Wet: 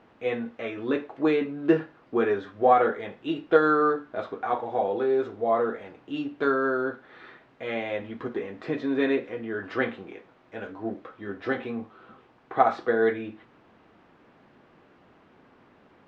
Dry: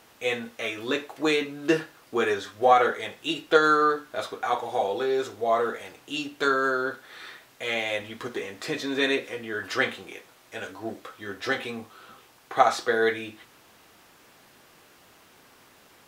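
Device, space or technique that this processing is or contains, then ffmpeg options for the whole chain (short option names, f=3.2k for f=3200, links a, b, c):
phone in a pocket: -af "lowpass=3.1k,equalizer=f=230:t=o:w=1.4:g=5,highshelf=f=2.3k:g=-12"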